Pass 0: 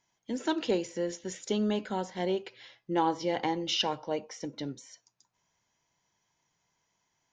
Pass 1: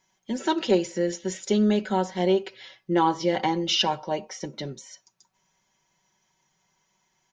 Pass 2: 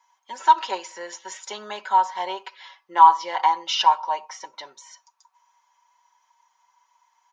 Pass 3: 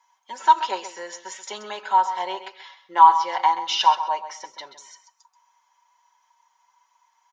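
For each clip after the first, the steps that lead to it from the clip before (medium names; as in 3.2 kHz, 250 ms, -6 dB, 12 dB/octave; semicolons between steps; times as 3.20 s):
comb 5.3 ms; trim +4.5 dB
resonant high-pass 980 Hz, resonance Q 6.8; trim -1.5 dB
feedback delay 131 ms, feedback 18%, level -12 dB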